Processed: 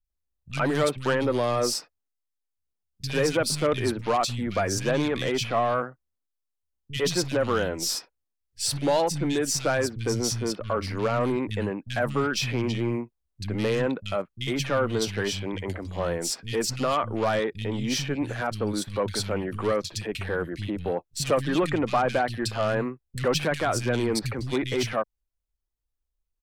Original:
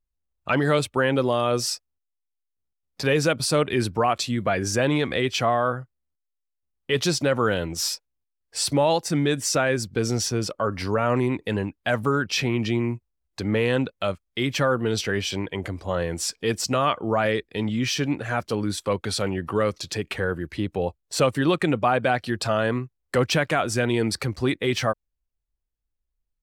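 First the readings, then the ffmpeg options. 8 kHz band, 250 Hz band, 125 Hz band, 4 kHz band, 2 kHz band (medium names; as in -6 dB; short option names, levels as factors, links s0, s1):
-1.5 dB, -3.0 dB, -3.0 dB, -2.5 dB, -4.0 dB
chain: -filter_complex "[0:a]aeval=exprs='0.376*(cos(1*acos(clip(val(0)/0.376,-1,1)))-cos(1*PI/2))+0.0668*(cos(4*acos(clip(val(0)/0.376,-1,1)))-cos(4*PI/2))+0.0531*(cos(6*acos(clip(val(0)/0.376,-1,1)))-cos(6*PI/2))':c=same,acrossover=split=170|2300[s0][s1][s2];[s2]adelay=40[s3];[s1]adelay=100[s4];[s0][s4][s3]amix=inputs=3:normalize=0,volume=0.841"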